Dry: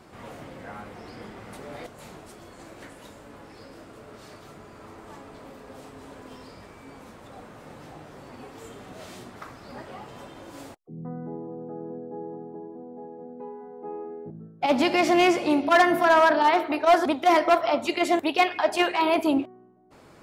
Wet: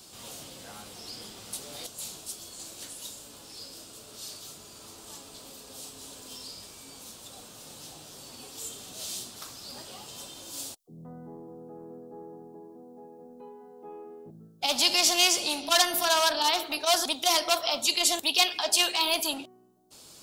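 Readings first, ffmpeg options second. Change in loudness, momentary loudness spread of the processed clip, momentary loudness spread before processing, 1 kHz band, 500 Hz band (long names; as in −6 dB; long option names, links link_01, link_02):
−3.5 dB, 22 LU, 22 LU, −8.0 dB, −9.5 dB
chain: -filter_complex "[0:a]acrossover=split=560[link_01][link_02];[link_01]asoftclip=type=tanh:threshold=-32dB[link_03];[link_02]aexciter=amount=11:drive=4.1:freq=3000[link_04];[link_03][link_04]amix=inputs=2:normalize=0,volume=-7dB"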